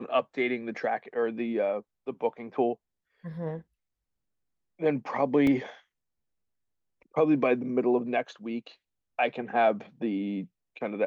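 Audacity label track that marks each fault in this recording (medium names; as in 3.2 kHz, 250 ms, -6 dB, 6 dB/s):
5.470000	5.470000	dropout 2.7 ms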